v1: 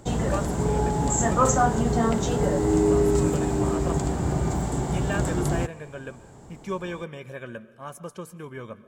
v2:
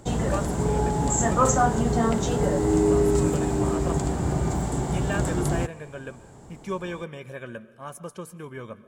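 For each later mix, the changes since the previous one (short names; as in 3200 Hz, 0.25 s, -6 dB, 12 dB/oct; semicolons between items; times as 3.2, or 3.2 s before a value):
master: add bell 9600 Hz +4.5 dB 0.21 oct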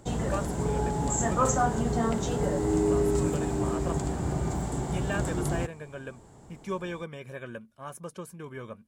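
background -4.5 dB; reverb: off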